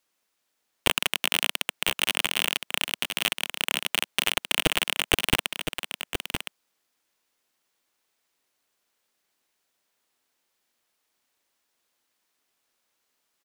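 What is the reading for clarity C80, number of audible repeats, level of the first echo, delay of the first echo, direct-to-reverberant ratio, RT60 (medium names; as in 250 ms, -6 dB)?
no reverb, 1, -8.0 dB, 1014 ms, no reverb, no reverb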